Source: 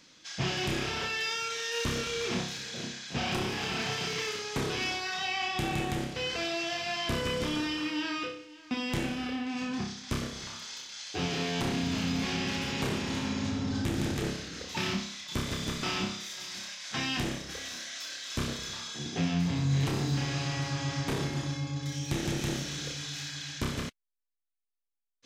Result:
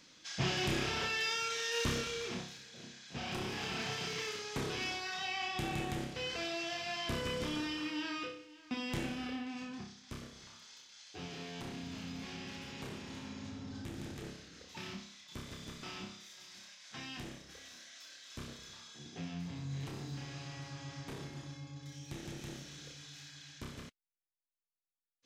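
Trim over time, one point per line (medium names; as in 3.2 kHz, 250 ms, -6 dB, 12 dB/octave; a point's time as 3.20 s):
1.90 s -2.5 dB
2.70 s -14.5 dB
3.57 s -6 dB
9.35 s -6 dB
9.91 s -13.5 dB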